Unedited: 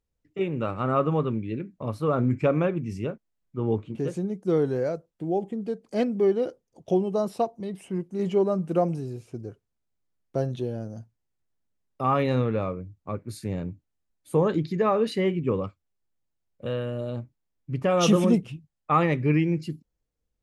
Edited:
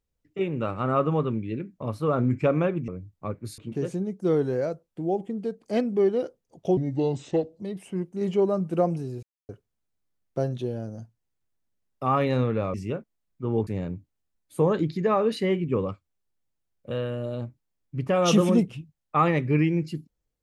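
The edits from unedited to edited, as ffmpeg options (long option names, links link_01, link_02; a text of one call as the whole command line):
ffmpeg -i in.wav -filter_complex "[0:a]asplit=9[link_01][link_02][link_03][link_04][link_05][link_06][link_07][link_08][link_09];[link_01]atrim=end=2.882[link_10];[link_02]atrim=start=12.718:end=13.422[link_11];[link_03]atrim=start=3.808:end=7.004[link_12];[link_04]atrim=start=7:end=7.58,asetpts=PTS-STARTPTS,asetrate=30870,aresample=44100[link_13];[link_05]atrim=start=7.576:end=9.21,asetpts=PTS-STARTPTS,afade=type=out:start_time=1.63:duration=0.004:curve=hsin[link_14];[link_06]atrim=start=9.21:end=9.47,asetpts=PTS-STARTPTS,volume=0[link_15];[link_07]atrim=start=9.47:end=12.722,asetpts=PTS-STARTPTS,afade=type=in:duration=0.004:curve=hsin[link_16];[link_08]atrim=start=2.878:end=3.812[link_17];[link_09]atrim=start=13.418[link_18];[link_10][link_11]acrossfade=duration=0.004:curve1=hsin:curve2=hsin[link_19];[link_19][link_12]acrossfade=duration=0.004:curve1=hsin:curve2=hsin[link_20];[link_20][link_13]acrossfade=duration=0.004:curve1=hsin:curve2=hsin[link_21];[link_14][link_15][link_16]concat=n=3:v=0:a=1[link_22];[link_21][link_22]acrossfade=duration=0.004:curve1=hsin:curve2=hsin[link_23];[link_23][link_17]acrossfade=duration=0.004:curve1=hsin:curve2=hsin[link_24];[link_24][link_18]acrossfade=duration=0.004:curve1=hsin:curve2=hsin" out.wav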